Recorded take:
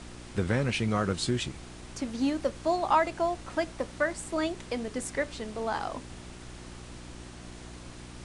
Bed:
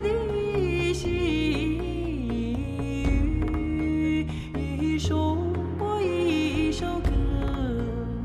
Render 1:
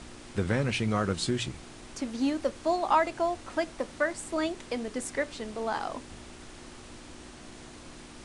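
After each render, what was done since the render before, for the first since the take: de-hum 60 Hz, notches 3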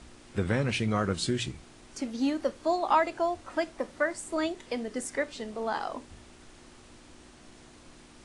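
noise print and reduce 6 dB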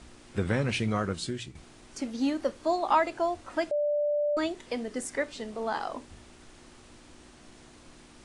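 0.85–1.55 s: fade out, to -10 dB; 3.71–4.37 s: bleep 589 Hz -24 dBFS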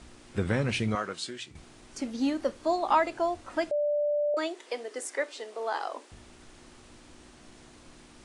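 0.95–1.51 s: frequency weighting A; 4.34–6.12 s: inverse Chebyshev high-pass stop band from 170 Hz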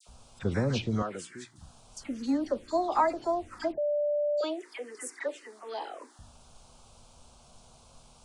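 touch-sensitive phaser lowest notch 280 Hz, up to 3 kHz, full sweep at -23.5 dBFS; phase dispersion lows, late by 72 ms, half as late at 1.8 kHz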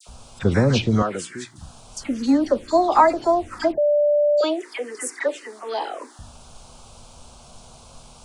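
trim +10.5 dB

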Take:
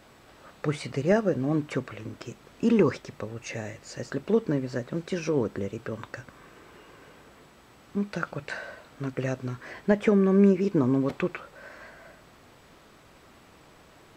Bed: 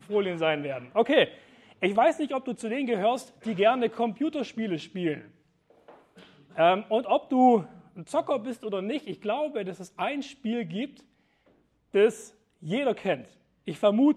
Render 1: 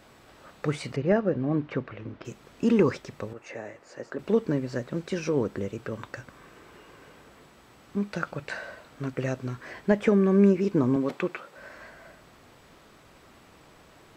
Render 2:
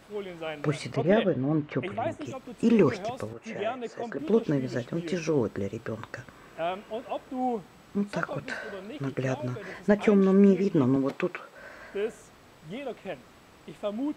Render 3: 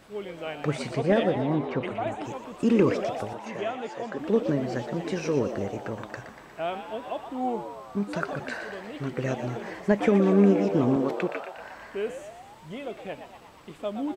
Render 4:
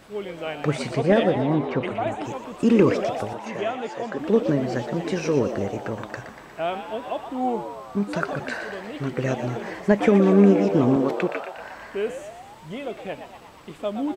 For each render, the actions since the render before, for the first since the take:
0.96–2.25 s: distance through air 250 m; 3.33–4.19 s: three-band isolator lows -15 dB, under 270 Hz, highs -12 dB, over 2 kHz; 10.96–11.57 s: high-pass 190 Hz
add bed -10 dB
frequency-shifting echo 119 ms, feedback 64%, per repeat +99 Hz, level -10 dB
trim +4 dB

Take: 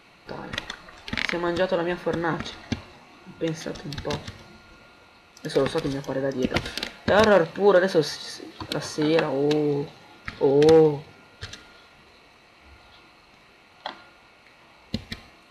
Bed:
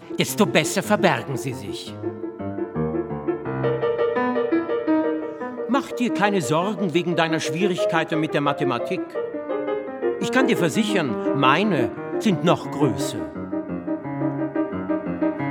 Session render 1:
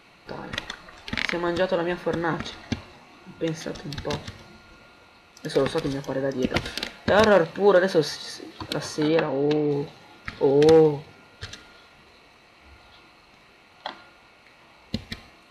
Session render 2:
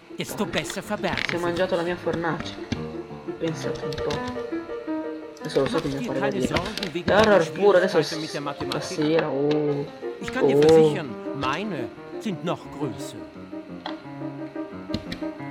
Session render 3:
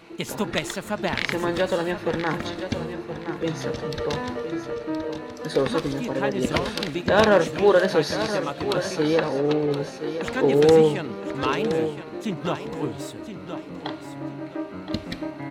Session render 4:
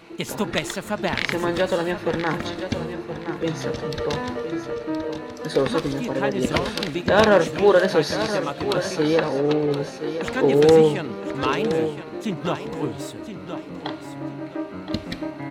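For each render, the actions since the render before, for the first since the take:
9.08–9.71 s: distance through air 130 m
add bed -9 dB
feedback delay 1021 ms, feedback 27%, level -10 dB
trim +1.5 dB

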